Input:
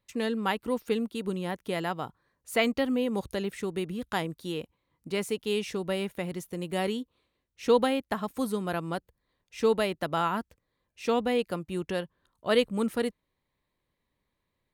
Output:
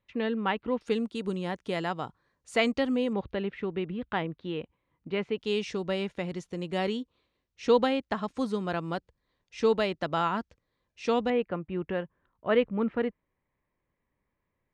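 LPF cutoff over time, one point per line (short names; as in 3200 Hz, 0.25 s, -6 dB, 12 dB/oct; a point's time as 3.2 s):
LPF 24 dB/oct
3300 Hz
from 0.81 s 7800 Hz
from 3.13 s 3100 Hz
from 5.38 s 6600 Hz
from 11.3 s 2500 Hz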